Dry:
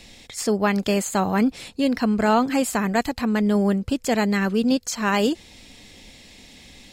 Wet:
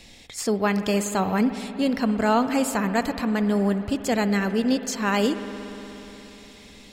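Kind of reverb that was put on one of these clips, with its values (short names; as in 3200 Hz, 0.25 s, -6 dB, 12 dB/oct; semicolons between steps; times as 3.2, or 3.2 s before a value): spring tank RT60 3.9 s, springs 59 ms, chirp 70 ms, DRR 10 dB; gain -2 dB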